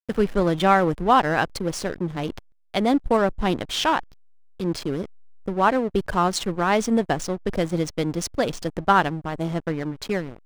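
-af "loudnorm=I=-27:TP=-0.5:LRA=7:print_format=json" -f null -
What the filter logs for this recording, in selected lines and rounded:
"input_i" : "-23.7",
"input_tp" : "-4.6",
"input_lra" : "2.8",
"input_thresh" : "-33.9",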